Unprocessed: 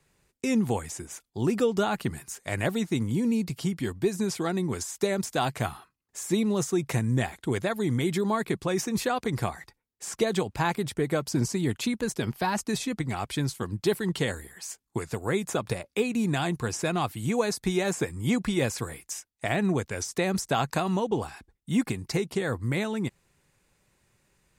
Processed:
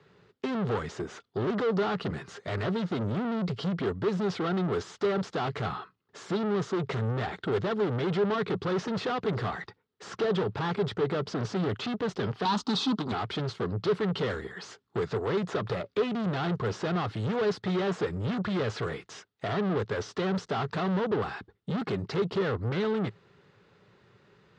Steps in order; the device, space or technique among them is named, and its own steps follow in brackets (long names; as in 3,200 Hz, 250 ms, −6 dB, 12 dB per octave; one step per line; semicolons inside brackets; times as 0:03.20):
guitar amplifier (tube saturation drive 38 dB, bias 0.25; bass and treble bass −3 dB, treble +6 dB; loudspeaker in its box 90–3,700 Hz, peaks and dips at 110 Hz +8 dB, 180 Hz +7 dB, 420 Hz +10 dB, 1,300 Hz +6 dB, 2,400 Hz −6 dB)
0:12.45–0:13.12: octave-band graphic EQ 125/250/500/1,000/2,000/4,000/8,000 Hz −11/+11/−9/+9/−9/+10/+5 dB
level +8 dB